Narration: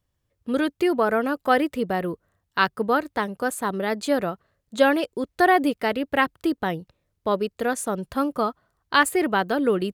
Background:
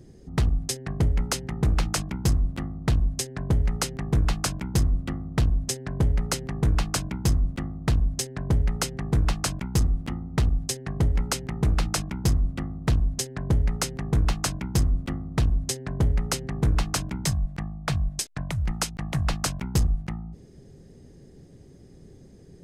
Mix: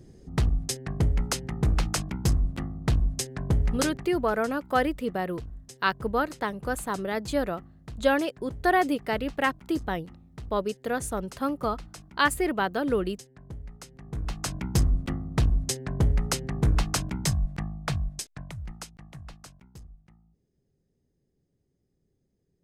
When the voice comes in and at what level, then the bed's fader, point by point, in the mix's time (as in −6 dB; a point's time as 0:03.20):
3.25 s, −4.5 dB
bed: 0:03.91 −1.5 dB
0:04.13 −18.5 dB
0:13.86 −18.5 dB
0:14.65 −0.5 dB
0:17.73 −0.5 dB
0:19.82 −25.5 dB